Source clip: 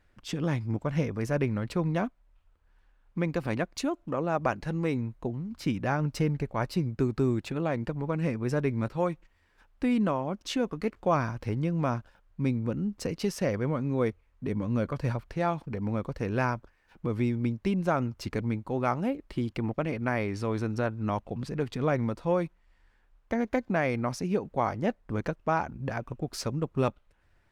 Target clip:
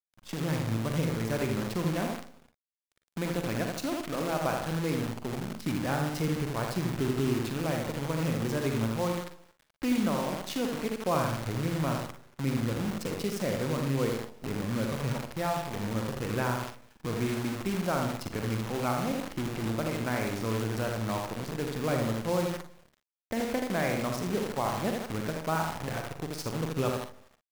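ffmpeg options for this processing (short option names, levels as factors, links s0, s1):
-filter_complex "[0:a]asplit=2[s0][s1];[s1]adelay=80,lowpass=f=2300:p=1,volume=0.668,asplit=2[s2][s3];[s3]adelay=80,lowpass=f=2300:p=1,volume=0.49,asplit=2[s4][s5];[s5]adelay=80,lowpass=f=2300:p=1,volume=0.49,asplit=2[s6][s7];[s7]adelay=80,lowpass=f=2300:p=1,volume=0.49,asplit=2[s8][s9];[s9]adelay=80,lowpass=f=2300:p=1,volume=0.49,asplit=2[s10][s11];[s11]adelay=80,lowpass=f=2300:p=1,volume=0.49[s12];[s2][s4][s6][s8][s10][s12]amix=inputs=6:normalize=0[s13];[s0][s13]amix=inputs=2:normalize=0,acrusher=bits=6:dc=4:mix=0:aa=0.000001,asplit=2[s14][s15];[s15]aecho=0:1:44|57:0.316|0.237[s16];[s14][s16]amix=inputs=2:normalize=0,volume=0.631"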